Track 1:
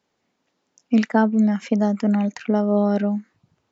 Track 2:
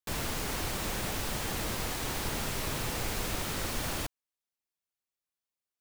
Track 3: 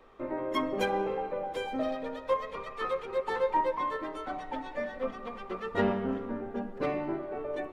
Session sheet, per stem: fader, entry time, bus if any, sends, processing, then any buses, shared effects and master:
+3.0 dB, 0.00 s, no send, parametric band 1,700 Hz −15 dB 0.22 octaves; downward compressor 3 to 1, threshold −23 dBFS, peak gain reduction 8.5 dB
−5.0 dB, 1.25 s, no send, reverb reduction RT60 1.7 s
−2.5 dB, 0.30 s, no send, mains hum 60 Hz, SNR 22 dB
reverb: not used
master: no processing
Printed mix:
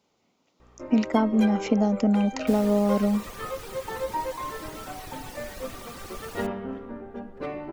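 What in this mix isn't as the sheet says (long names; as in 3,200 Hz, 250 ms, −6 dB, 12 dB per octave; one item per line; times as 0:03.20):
stem 2: entry 1.25 s → 2.40 s
stem 3: entry 0.30 s → 0.60 s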